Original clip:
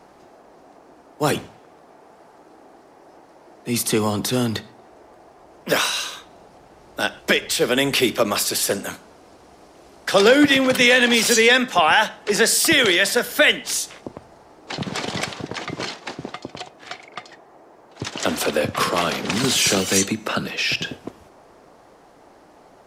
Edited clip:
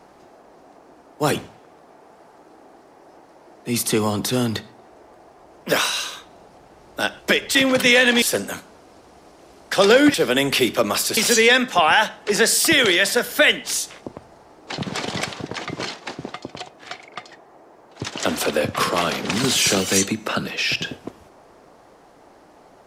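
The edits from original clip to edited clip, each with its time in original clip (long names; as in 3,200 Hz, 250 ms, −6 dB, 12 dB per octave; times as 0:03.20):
0:07.55–0:08.58: swap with 0:10.50–0:11.17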